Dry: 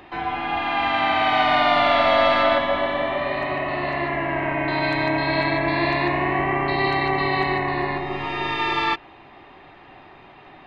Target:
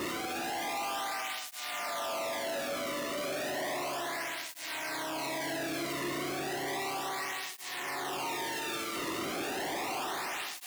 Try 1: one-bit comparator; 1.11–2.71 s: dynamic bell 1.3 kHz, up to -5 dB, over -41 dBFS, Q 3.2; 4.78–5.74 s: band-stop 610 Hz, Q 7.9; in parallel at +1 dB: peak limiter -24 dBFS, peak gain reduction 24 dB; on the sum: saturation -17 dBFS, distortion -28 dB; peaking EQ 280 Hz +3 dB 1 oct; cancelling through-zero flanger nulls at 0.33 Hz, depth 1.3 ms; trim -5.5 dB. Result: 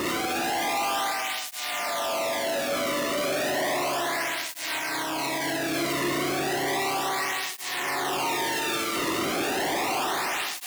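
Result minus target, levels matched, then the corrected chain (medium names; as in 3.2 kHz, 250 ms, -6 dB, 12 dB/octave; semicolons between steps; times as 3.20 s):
saturation: distortion -10 dB
one-bit comparator; 1.11–2.71 s: dynamic bell 1.3 kHz, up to -5 dB, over -41 dBFS, Q 3.2; 4.78–5.74 s: band-stop 610 Hz, Q 7.9; in parallel at +1 dB: peak limiter -24 dBFS, peak gain reduction 24 dB; on the sum: saturation -27.5 dBFS, distortion -18 dB; peaking EQ 280 Hz +3 dB 1 oct; cancelling through-zero flanger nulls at 0.33 Hz, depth 1.3 ms; trim -5.5 dB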